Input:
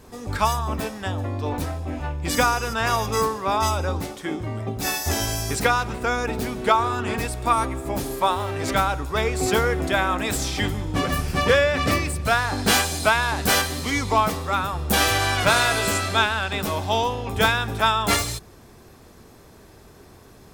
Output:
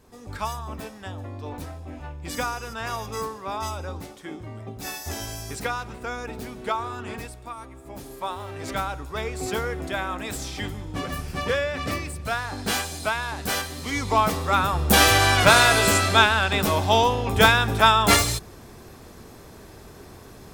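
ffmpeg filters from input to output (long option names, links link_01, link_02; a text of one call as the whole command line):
ffmpeg -i in.wav -af "volume=13.5dB,afade=type=out:start_time=7.15:duration=0.39:silence=0.316228,afade=type=in:start_time=7.54:duration=1.2:silence=0.266073,afade=type=in:start_time=13.75:duration=0.96:silence=0.298538" out.wav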